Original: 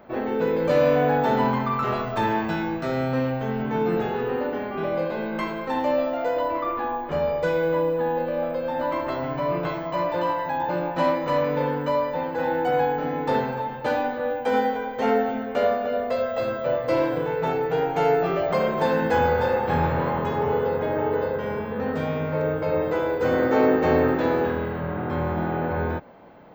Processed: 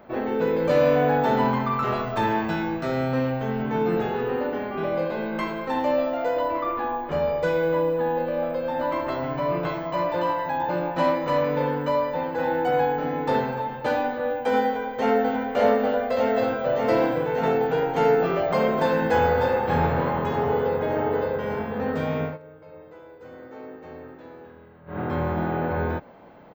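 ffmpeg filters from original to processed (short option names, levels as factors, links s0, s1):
-filter_complex "[0:a]asplit=2[s0][s1];[s1]afade=t=in:st=14.65:d=0.01,afade=t=out:st=15.35:d=0.01,aecho=0:1:590|1180|1770|2360|2950|3540|4130|4720|5310|5900|6490|7080:0.794328|0.675179|0.573902|0.487817|0.414644|0.352448|0.299581|0.254643|0.216447|0.18398|0.156383|0.132925[s2];[s0][s2]amix=inputs=2:normalize=0,asplit=3[s3][s4][s5];[s3]atrim=end=22.38,asetpts=PTS-STARTPTS,afade=t=out:st=22.24:d=0.14:silence=0.0841395[s6];[s4]atrim=start=22.38:end=24.86,asetpts=PTS-STARTPTS,volume=0.0841[s7];[s5]atrim=start=24.86,asetpts=PTS-STARTPTS,afade=t=in:d=0.14:silence=0.0841395[s8];[s6][s7][s8]concat=n=3:v=0:a=1"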